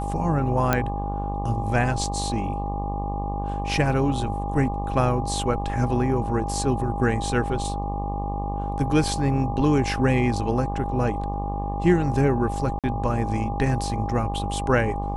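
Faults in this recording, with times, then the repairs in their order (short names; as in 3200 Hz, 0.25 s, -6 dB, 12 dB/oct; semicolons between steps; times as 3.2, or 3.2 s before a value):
buzz 50 Hz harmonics 24 -29 dBFS
tone 810 Hz -30 dBFS
0.73 pop -6 dBFS
12.79–12.84 gap 47 ms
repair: de-click; notch 810 Hz, Q 30; de-hum 50 Hz, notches 24; interpolate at 12.79, 47 ms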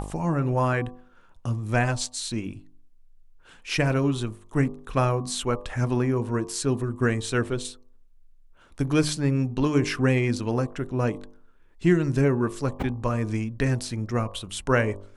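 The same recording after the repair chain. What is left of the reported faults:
none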